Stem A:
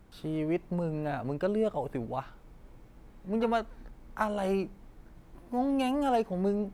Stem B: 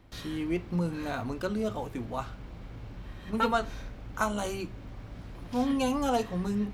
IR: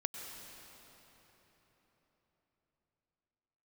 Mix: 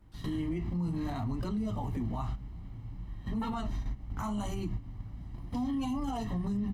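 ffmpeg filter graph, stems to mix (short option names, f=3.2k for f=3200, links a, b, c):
-filter_complex "[0:a]volume=-9.5dB,asplit=2[a][b];[1:a]lowshelf=f=480:g=11,aecho=1:1:1:0.92,flanger=delay=6.1:depth=8.8:regen=-59:speed=0.65:shape=sinusoidal,adelay=17,volume=1.5dB[c];[b]apad=whole_len=297889[d];[c][d]sidechaingate=range=-12dB:threshold=-55dB:ratio=16:detection=peak[e];[a][e]amix=inputs=2:normalize=0,alimiter=level_in=2.5dB:limit=-24dB:level=0:latency=1:release=112,volume=-2.5dB"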